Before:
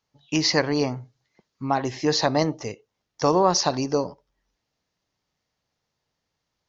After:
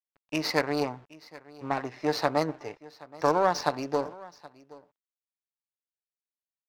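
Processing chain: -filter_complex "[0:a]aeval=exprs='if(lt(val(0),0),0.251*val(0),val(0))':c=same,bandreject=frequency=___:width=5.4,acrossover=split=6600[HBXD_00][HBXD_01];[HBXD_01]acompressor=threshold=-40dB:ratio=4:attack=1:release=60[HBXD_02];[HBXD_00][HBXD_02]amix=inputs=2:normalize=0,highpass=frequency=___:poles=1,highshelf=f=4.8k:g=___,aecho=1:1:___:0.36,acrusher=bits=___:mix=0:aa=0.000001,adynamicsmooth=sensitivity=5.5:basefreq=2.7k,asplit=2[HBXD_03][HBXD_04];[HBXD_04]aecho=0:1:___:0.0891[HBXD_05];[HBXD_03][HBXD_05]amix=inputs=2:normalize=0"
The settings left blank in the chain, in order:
3.2k, 500, -8, 6.8, 8, 774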